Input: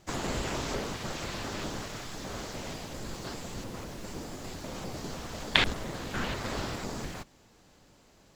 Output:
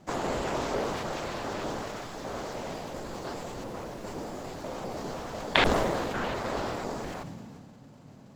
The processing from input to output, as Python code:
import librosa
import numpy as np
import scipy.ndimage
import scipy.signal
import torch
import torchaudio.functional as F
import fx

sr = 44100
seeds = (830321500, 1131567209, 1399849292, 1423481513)

y = fx.peak_eq(x, sr, hz=650.0, db=11.0, octaves=2.6)
y = fx.dmg_noise_band(y, sr, seeds[0], low_hz=99.0, high_hz=270.0, level_db=-48.0)
y = fx.sustainer(y, sr, db_per_s=24.0)
y = y * librosa.db_to_amplitude(-5.0)